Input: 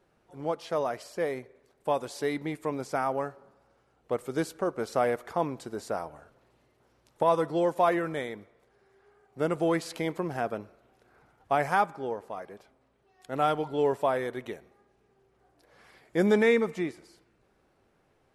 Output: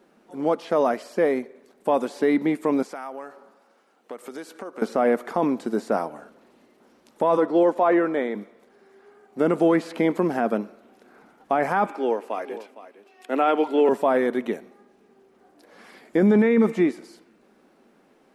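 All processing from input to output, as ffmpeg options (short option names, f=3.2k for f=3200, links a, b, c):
-filter_complex "[0:a]asettb=1/sr,asplit=3[a][b][c];[a]atrim=end=2.824[d];[b]atrim=start=2.82:end=4.82,asetpts=PTS-STARTPTS,afade=t=in:d=0.004:c=qsin,afade=t=out:st=1.996:d=0.004:c=qsin,acompressor=threshold=-37dB:ratio=6:attack=3.2:release=140:knee=1:detection=peak,highpass=f=680:p=1[e];[c]atrim=start=4.816[f];[d][e]acrossfade=d=0.004:c1=hsin:c2=qsin[g];[g][f]acrossfade=d=0.004:c1=qsin:c2=hsin,asettb=1/sr,asplit=3[h][i][j];[h]atrim=end=7.374[k];[i]atrim=start=7.37:end=8.35,asetpts=PTS-STARTPTS,afade=t=in:d=0.004:c=qsin,afade=t=out:st=0.976:d=0.004:c=qsin,highpass=250,aemphasis=mode=reproduction:type=75kf[l];[j]atrim=start=8.346[m];[k][l]acrossfade=d=0.004:c1=hsin:c2=qsin[n];[n][m]acrossfade=d=0.004:c1=qsin:c2=hsin,asettb=1/sr,asplit=3[o][p][q];[o]atrim=end=11.864[r];[p]atrim=start=11.86:end=13.89,asetpts=PTS-STARTPTS,afade=t=in:d=0.004:c=qsin,afade=t=out:st=2.026:d=0.004:c=qsin,highpass=f=270:w=0.5412,highpass=f=270:w=1.3066,equalizer=f=2.6k:w=2.7:g=8.5,aecho=1:1:460:0.178,atrim=end_sample=89523[s];[q]atrim=start=13.886[t];[r][s]acrossfade=d=0.004:c1=hsin:c2=qsin[u];[u][t]acrossfade=d=0.004:c1=qsin:c2=hsin,acrossover=split=2700[v][w];[w]acompressor=threshold=-54dB:ratio=4:attack=1:release=60[x];[v][x]amix=inputs=2:normalize=0,lowshelf=f=150:t=q:w=3:g=-13.5,alimiter=limit=-19dB:level=0:latency=1:release=13,volume=8dB"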